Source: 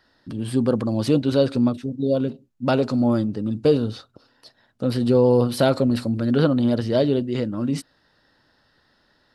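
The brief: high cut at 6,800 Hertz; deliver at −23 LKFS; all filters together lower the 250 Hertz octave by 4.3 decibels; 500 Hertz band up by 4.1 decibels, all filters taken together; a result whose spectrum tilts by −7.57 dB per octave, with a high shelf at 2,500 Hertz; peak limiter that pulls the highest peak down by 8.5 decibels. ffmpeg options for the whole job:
ffmpeg -i in.wav -af "lowpass=6800,equalizer=frequency=250:width_type=o:gain=-6.5,equalizer=frequency=500:width_type=o:gain=6.5,highshelf=frequency=2500:gain=-6,volume=1dB,alimiter=limit=-12dB:level=0:latency=1" out.wav

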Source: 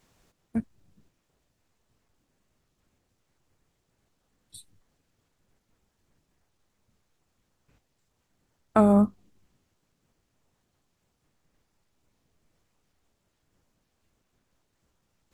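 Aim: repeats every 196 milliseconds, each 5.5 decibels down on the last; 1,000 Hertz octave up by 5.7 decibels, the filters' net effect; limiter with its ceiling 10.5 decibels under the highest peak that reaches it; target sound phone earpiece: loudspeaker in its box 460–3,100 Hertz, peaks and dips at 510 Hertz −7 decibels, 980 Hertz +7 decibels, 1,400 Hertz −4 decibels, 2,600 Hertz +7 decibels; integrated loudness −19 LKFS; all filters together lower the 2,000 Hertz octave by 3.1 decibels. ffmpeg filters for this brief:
ffmpeg -i in.wav -af "equalizer=frequency=1000:width_type=o:gain=6.5,equalizer=frequency=2000:width_type=o:gain=-6.5,alimiter=limit=-16dB:level=0:latency=1,highpass=460,equalizer=frequency=510:width_type=q:width=4:gain=-7,equalizer=frequency=980:width_type=q:width=4:gain=7,equalizer=frequency=1400:width_type=q:width=4:gain=-4,equalizer=frequency=2600:width_type=q:width=4:gain=7,lowpass=frequency=3100:width=0.5412,lowpass=frequency=3100:width=1.3066,aecho=1:1:196|392|588|784|980|1176|1372:0.531|0.281|0.149|0.079|0.0419|0.0222|0.0118,volume=15.5dB" out.wav

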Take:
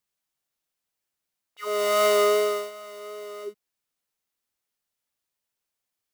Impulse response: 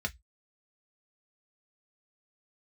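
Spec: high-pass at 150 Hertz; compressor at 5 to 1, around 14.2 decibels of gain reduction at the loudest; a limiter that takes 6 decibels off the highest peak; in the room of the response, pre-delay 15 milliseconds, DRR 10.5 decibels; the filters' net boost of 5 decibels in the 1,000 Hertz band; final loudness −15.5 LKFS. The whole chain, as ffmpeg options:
-filter_complex "[0:a]highpass=150,equalizer=frequency=1000:width_type=o:gain=6.5,acompressor=threshold=-31dB:ratio=5,alimiter=level_in=5dB:limit=-24dB:level=0:latency=1,volume=-5dB,asplit=2[link_01][link_02];[1:a]atrim=start_sample=2205,adelay=15[link_03];[link_02][link_03]afir=irnorm=-1:irlink=0,volume=-14.5dB[link_04];[link_01][link_04]amix=inputs=2:normalize=0,volume=21dB"

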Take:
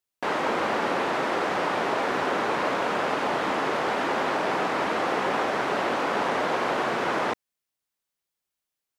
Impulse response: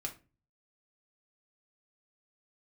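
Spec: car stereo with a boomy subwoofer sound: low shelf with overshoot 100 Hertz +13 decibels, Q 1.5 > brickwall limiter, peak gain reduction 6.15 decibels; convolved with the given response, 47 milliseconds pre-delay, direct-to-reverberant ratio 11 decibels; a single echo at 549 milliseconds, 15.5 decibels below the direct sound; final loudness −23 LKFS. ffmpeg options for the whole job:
-filter_complex "[0:a]aecho=1:1:549:0.168,asplit=2[link_01][link_02];[1:a]atrim=start_sample=2205,adelay=47[link_03];[link_02][link_03]afir=irnorm=-1:irlink=0,volume=-11dB[link_04];[link_01][link_04]amix=inputs=2:normalize=0,lowshelf=frequency=100:width_type=q:width=1.5:gain=13,volume=4.5dB,alimiter=limit=-14dB:level=0:latency=1"

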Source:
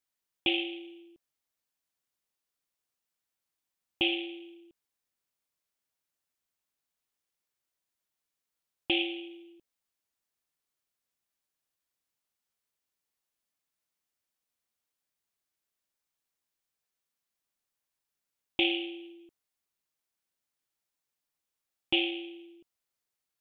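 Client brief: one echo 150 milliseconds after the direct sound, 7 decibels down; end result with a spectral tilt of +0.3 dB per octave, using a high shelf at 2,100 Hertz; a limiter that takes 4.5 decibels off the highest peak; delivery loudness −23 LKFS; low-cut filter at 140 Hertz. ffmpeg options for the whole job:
ffmpeg -i in.wav -af "highpass=140,highshelf=frequency=2100:gain=-4,alimiter=limit=-19.5dB:level=0:latency=1,aecho=1:1:150:0.447,volume=11dB" out.wav

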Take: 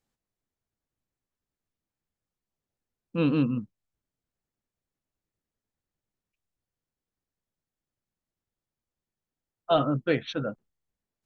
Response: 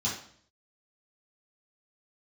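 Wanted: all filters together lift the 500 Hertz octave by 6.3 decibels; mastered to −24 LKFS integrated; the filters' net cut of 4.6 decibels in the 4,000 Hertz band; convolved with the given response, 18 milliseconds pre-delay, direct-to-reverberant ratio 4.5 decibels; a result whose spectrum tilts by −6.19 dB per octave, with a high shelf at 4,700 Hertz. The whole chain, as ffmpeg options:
-filter_complex "[0:a]equalizer=frequency=500:width_type=o:gain=8,equalizer=frequency=4000:width_type=o:gain=-4,highshelf=frequency=4700:gain=-5,asplit=2[link_01][link_02];[1:a]atrim=start_sample=2205,adelay=18[link_03];[link_02][link_03]afir=irnorm=-1:irlink=0,volume=-11dB[link_04];[link_01][link_04]amix=inputs=2:normalize=0,volume=-1.5dB"

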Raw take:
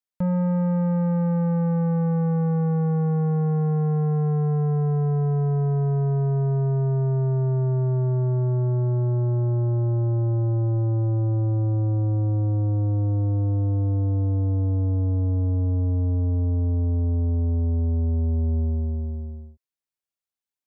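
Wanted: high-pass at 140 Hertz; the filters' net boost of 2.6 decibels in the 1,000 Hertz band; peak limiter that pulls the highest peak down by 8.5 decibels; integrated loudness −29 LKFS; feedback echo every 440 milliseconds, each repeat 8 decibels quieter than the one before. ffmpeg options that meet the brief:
ffmpeg -i in.wav -af "highpass=140,equalizer=frequency=1000:width_type=o:gain=3.5,alimiter=level_in=0.5dB:limit=-24dB:level=0:latency=1,volume=-0.5dB,aecho=1:1:440|880|1320|1760|2200:0.398|0.159|0.0637|0.0255|0.0102,volume=3dB" out.wav

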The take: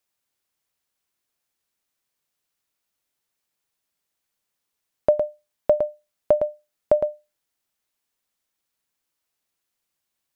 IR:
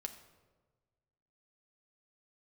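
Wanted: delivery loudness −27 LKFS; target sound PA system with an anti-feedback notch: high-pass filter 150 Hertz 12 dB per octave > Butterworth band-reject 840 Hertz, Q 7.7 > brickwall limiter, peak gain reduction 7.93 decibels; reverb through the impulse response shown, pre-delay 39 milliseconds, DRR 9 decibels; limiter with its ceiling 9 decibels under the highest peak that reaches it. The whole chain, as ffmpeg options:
-filter_complex "[0:a]alimiter=limit=-16dB:level=0:latency=1,asplit=2[link_01][link_02];[1:a]atrim=start_sample=2205,adelay=39[link_03];[link_02][link_03]afir=irnorm=-1:irlink=0,volume=-6.5dB[link_04];[link_01][link_04]amix=inputs=2:normalize=0,highpass=150,asuperstop=centerf=840:order=8:qfactor=7.7,volume=9dB,alimiter=limit=-14.5dB:level=0:latency=1"

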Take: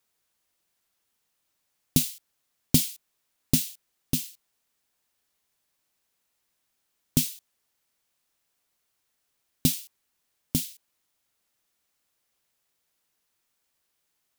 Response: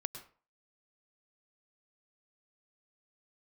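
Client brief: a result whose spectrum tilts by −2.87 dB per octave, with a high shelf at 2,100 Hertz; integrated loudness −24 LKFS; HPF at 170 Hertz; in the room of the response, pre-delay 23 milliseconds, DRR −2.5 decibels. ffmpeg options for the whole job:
-filter_complex "[0:a]highpass=170,highshelf=frequency=2100:gain=-4,asplit=2[link_01][link_02];[1:a]atrim=start_sample=2205,adelay=23[link_03];[link_02][link_03]afir=irnorm=-1:irlink=0,volume=3dB[link_04];[link_01][link_04]amix=inputs=2:normalize=0,volume=3dB"

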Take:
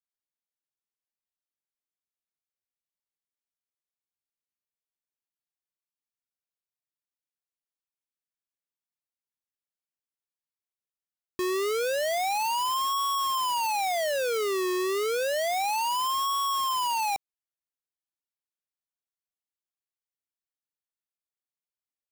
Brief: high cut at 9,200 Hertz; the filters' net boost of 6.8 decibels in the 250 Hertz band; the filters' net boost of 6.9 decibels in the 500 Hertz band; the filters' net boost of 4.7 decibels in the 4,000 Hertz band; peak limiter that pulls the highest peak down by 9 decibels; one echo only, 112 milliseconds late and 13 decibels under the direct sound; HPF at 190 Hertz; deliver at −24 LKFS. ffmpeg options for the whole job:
ffmpeg -i in.wav -af "highpass=190,lowpass=9200,equalizer=frequency=250:width_type=o:gain=7.5,equalizer=frequency=500:width_type=o:gain=6.5,equalizer=frequency=4000:width_type=o:gain=6.5,alimiter=limit=-23.5dB:level=0:latency=1,aecho=1:1:112:0.224,volume=2dB" out.wav

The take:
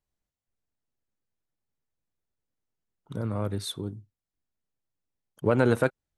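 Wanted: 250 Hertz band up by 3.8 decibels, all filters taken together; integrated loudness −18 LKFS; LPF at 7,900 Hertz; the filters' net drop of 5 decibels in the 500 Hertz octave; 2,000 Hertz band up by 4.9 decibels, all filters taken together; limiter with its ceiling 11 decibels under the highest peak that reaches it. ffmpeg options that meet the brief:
ffmpeg -i in.wav -af "lowpass=7900,equalizer=frequency=250:width_type=o:gain=6.5,equalizer=frequency=500:width_type=o:gain=-8.5,equalizer=frequency=2000:width_type=o:gain=8.5,volume=13.5dB,alimiter=limit=-5dB:level=0:latency=1" out.wav

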